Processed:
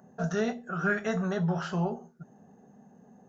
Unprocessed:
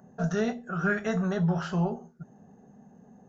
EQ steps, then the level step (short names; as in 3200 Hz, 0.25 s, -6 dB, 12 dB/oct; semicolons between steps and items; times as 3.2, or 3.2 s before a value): low shelf 120 Hz -8.5 dB; 0.0 dB